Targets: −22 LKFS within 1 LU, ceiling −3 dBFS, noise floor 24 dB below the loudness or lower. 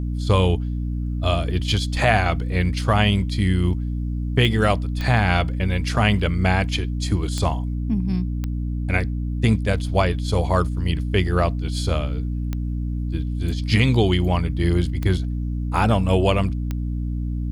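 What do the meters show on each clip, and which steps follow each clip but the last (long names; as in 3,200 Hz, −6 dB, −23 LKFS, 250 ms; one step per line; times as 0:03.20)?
number of clicks 7; mains hum 60 Hz; hum harmonics up to 300 Hz; level of the hum −22 dBFS; integrated loudness −22.0 LKFS; sample peak −3.5 dBFS; target loudness −22.0 LKFS
→ click removal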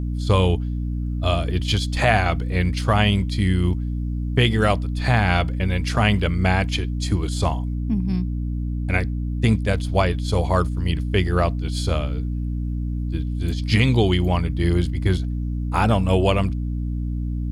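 number of clicks 0; mains hum 60 Hz; hum harmonics up to 300 Hz; level of the hum −22 dBFS
→ hum removal 60 Hz, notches 5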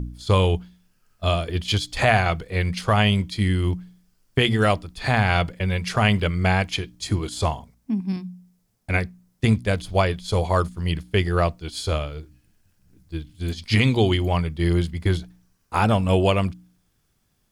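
mains hum none found; integrated loudness −23.0 LKFS; sample peak −4.5 dBFS; target loudness −22.0 LKFS
→ level +1 dB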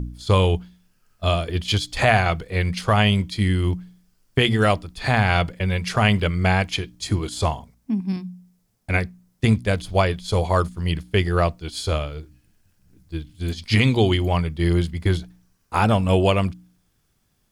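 integrated loudness −22.0 LKFS; sample peak −3.5 dBFS; background noise floor −67 dBFS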